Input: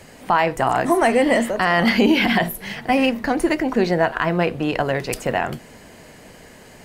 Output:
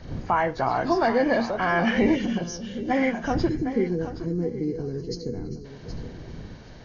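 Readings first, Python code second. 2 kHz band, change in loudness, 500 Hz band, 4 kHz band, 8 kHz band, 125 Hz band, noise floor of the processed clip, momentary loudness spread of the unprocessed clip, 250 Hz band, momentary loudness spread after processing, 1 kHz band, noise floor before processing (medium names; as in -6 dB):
-8.0 dB, -6.0 dB, -5.5 dB, -11.0 dB, -8.5 dB, -3.0 dB, -43 dBFS, 8 LU, -4.5 dB, 17 LU, -6.0 dB, -45 dBFS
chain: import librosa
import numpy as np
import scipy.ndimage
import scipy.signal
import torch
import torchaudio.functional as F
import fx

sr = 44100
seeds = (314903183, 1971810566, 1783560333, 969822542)

p1 = fx.freq_compress(x, sr, knee_hz=1300.0, ratio=1.5)
p2 = fx.dmg_wind(p1, sr, seeds[0], corner_hz=160.0, level_db=-34.0)
p3 = fx.spec_box(p2, sr, start_s=3.49, length_s=2.16, low_hz=510.0, high_hz=4000.0, gain_db=-25)
p4 = p3 + fx.echo_feedback(p3, sr, ms=770, feedback_pct=18, wet_db=-12.0, dry=0)
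p5 = fx.spec_box(p4, sr, start_s=2.15, length_s=0.76, low_hz=600.0, high_hz=2700.0, gain_db=-14)
y = p5 * librosa.db_to_amplitude(-5.0)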